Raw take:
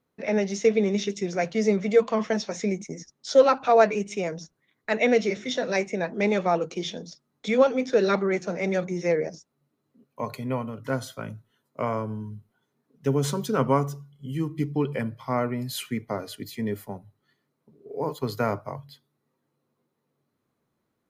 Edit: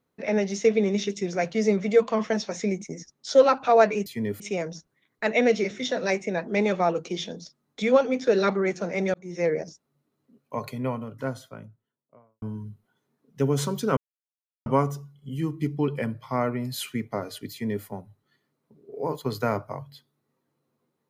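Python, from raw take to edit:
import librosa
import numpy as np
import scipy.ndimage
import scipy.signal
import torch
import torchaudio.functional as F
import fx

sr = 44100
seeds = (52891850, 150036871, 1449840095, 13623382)

y = fx.studio_fade_out(x, sr, start_s=10.38, length_s=1.7)
y = fx.edit(y, sr, fx.fade_in_span(start_s=8.8, length_s=0.35),
    fx.insert_silence(at_s=13.63, length_s=0.69),
    fx.duplicate(start_s=16.48, length_s=0.34, to_s=4.06), tone=tone)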